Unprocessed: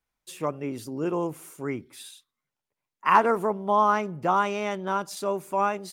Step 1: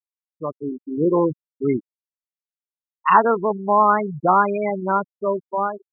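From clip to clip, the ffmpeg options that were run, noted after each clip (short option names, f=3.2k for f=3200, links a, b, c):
-af "afftfilt=real='re*gte(hypot(re,im),0.112)':imag='im*gte(hypot(re,im),0.112)':win_size=1024:overlap=0.75,dynaudnorm=f=230:g=7:m=12.5dB,volume=-1dB"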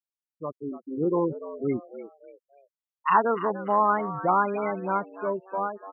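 -filter_complex "[0:a]asplit=4[a][b][c][d];[b]adelay=293,afreqshift=95,volume=-13.5dB[e];[c]adelay=586,afreqshift=190,volume=-22.6dB[f];[d]adelay=879,afreqshift=285,volume=-31.7dB[g];[a][e][f][g]amix=inputs=4:normalize=0,volume=-6.5dB"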